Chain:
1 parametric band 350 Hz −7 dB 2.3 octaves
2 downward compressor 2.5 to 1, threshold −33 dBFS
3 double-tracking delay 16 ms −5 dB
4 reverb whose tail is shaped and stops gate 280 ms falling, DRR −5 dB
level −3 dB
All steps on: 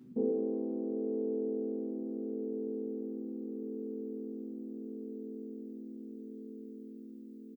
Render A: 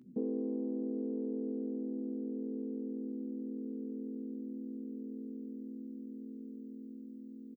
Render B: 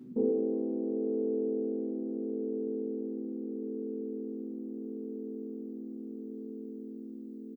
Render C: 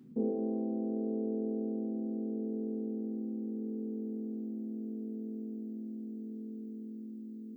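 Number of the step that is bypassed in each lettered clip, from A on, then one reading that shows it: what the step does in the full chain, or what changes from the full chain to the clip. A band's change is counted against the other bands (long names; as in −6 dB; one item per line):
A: 4, change in momentary loudness spread −2 LU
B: 1, change in momentary loudness spread −2 LU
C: 3, change in crest factor −2.0 dB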